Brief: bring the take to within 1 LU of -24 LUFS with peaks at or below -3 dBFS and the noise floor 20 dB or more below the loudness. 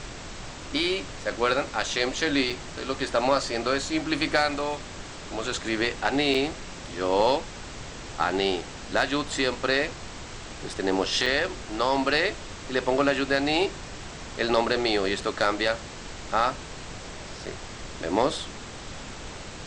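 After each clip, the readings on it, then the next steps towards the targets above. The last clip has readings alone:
dropouts 4; longest dropout 4.9 ms; noise floor -40 dBFS; noise floor target -46 dBFS; loudness -26.0 LUFS; peak level -9.0 dBFS; loudness target -24.0 LUFS
-> interpolate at 2.50/6.34/11.26/17.46 s, 4.9 ms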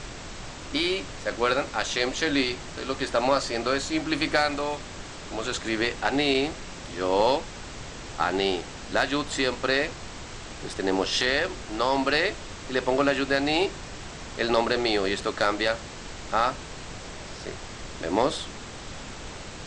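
dropouts 0; noise floor -40 dBFS; noise floor target -46 dBFS
-> noise print and reduce 6 dB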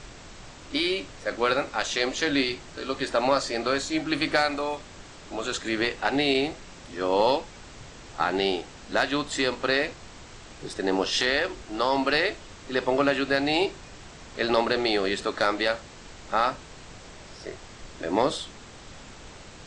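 noise floor -46 dBFS; loudness -26.0 LUFS; peak level -9.0 dBFS; loudness target -24.0 LUFS
-> trim +2 dB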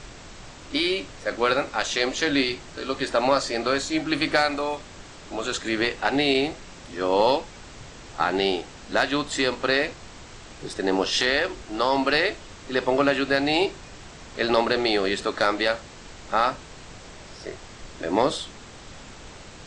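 loudness -24.0 LUFS; peak level -7.0 dBFS; noise floor -44 dBFS

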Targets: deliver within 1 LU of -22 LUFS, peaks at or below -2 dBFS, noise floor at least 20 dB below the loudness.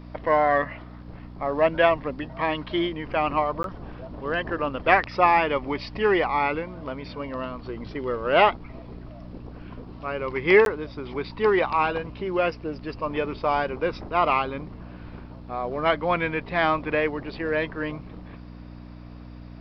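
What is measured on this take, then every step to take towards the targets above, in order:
dropouts 2; longest dropout 12 ms; hum 60 Hz; highest harmonic 300 Hz; hum level -40 dBFS; loudness -24.5 LUFS; peak level -3.5 dBFS; loudness target -22.0 LUFS
-> interpolate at 3.63/10.65 s, 12 ms; de-hum 60 Hz, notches 5; trim +2.5 dB; peak limiter -2 dBFS

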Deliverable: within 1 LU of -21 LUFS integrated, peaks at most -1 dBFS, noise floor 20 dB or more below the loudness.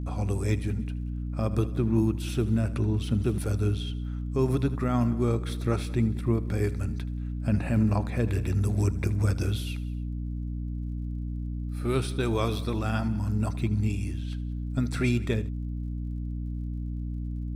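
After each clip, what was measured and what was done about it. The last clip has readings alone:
tick rate 40 per s; hum 60 Hz; highest harmonic 300 Hz; hum level -30 dBFS; loudness -29.0 LUFS; peak level -12.5 dBFS; loudness target -21.0 LUFS
-> de-click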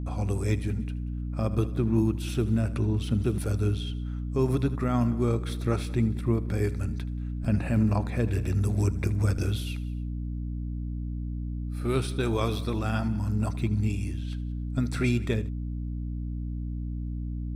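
tick rate 0.11 per s; hum 60 Hz; highest harmonic 300 Hz; hum level -30 dBFS
-> de-hum 60 Hz, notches 5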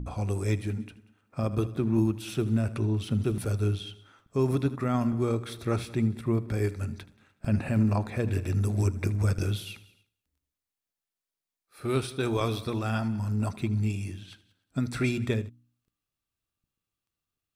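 hum not found; loudness -29.0 LUFS; peak level -13.5 dBFS; loudness target -21.0 LUFS
-> trim +8 dB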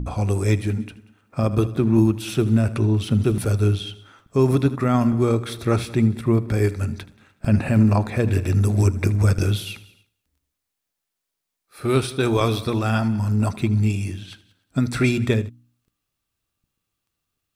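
loudness -21.0 LUFS; peak level -5.5 dBFS; noise floor -81 dBFS

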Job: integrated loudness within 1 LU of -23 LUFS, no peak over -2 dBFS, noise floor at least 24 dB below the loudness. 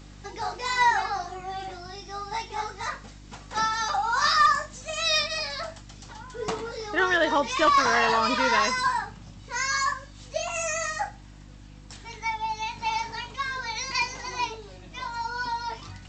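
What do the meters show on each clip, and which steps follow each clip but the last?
hum 50 Hz; highest harmonic 300 Hz; hum level -44 dBFS; loudness -26.0 LUFS; peak level -12.0 dBFS; loudness target -23.0 LUFS
-> de-hum 50 Hz, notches 6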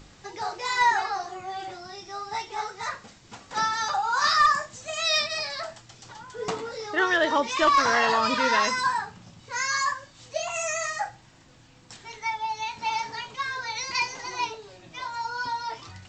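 hum not found; loudness -26.0 LUFS; peak level -12.0 dBFS; loudness target -23.0 LUFS
-> trim +3 dB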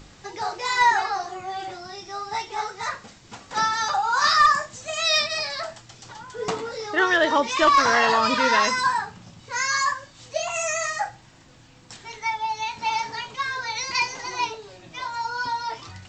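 loudness -23.0 LUFS; peak level -9.0 dBFS; noise floor -51 dBFS

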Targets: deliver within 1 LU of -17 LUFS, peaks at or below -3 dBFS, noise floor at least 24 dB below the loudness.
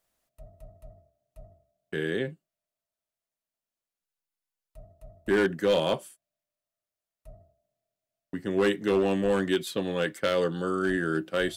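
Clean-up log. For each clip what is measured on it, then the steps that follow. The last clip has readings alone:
clipped samples 0.5%; clipping level -17.5 dBFS; loudness -27.5 LUFS; peak level -17.5 dBFS; loudness target -17.0 LUFS
-> clip repair -17.5 dBFS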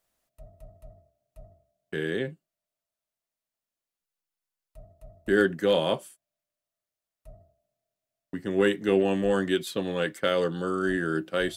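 clipped samples 0.0%; loudness -26.5 LUFS; peak level -9.0 dBFS; loudness target -17.0 LUFS
-> trim +9.5 dB; peak limiter -3 dBFS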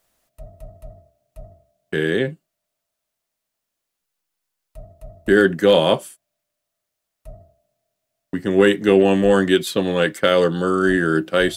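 loudness -17.5 LUFS; peak level -3.0 dBFS; noise floor -81 dBFS

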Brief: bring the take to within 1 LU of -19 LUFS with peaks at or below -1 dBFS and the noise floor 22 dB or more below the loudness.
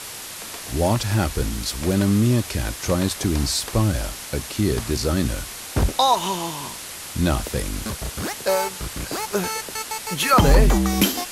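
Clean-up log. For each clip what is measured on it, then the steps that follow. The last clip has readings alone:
noise floor -35 dBFS; noise floor target -45 dBFS; loudness -22.5 LUFS; peak level -6.0 dBFS; loudness target -19.0 LUFS
-> noise print and reduce 10 dB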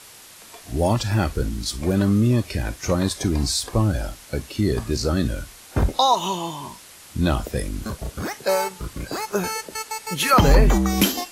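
noise floor -45 dBFS; loudness -22.5 LUFS; peak level -6.0 dBFS; loudness target -19.0 LUFS
-> trim +3.5 dB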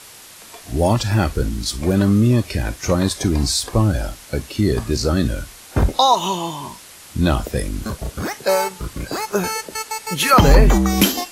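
loudness -19.0 LUFS; peak level -2.5 dBFS; noise floor -42 dBFS

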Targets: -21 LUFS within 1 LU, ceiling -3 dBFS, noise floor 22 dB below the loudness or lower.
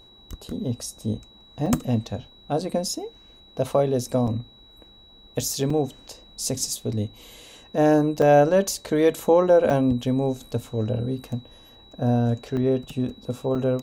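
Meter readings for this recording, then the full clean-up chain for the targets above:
dropouts 7; longest dropout 3.5 ms; steady tone 3.9 kHz; tone level -50 dBFS; loudness -23.5 LUFS; peak level -6.5 dBFS; loudness target -21.0 LUFS
-> interpolate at 1.66/4.27/5.70/8.22/9.70/12.57/13.55 s, 3.5 ms; band-stop 3.9 kHz, Q 30; trim +2.5 dB

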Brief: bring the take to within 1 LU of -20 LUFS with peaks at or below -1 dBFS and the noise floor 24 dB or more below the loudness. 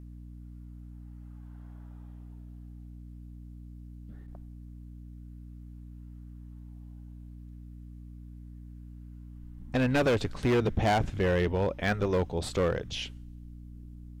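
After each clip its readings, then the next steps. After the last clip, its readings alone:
clipped samples 1.2%; clipping level -21.0 dBFS; hum 60 Hz; highest harmonic 300 Hz; hum level -43 dBFS; loudness -28.5 LUFS; peak level -21.0 dBFS; loudness target -20.0 LUFS
-> clip repair -21 dBFS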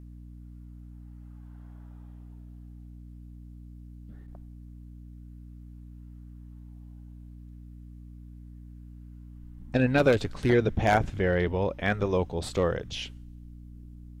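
clipped samples 0.0%; hum 60 Hz; highest harmonic 300 Hz; hum level -43 dBFS
-> hum notches 60/120/180/240/300 Hz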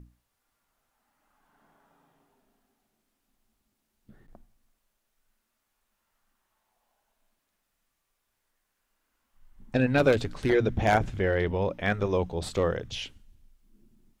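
hum not found; loudness -27.0 LUFS; peak level -11.5 dBFS; loudness target -20.0 LUFS
-> trim +7 dB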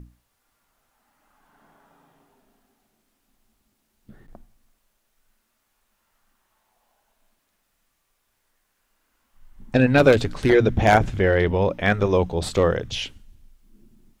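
loudness -20.0 LUFS; peak level -4.5 dBFS; noise floor -72 dBFS

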